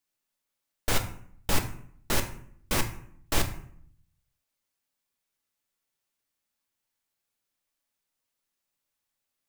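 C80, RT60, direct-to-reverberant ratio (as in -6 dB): 14.0 dB, 0.60 s, 5.0 dB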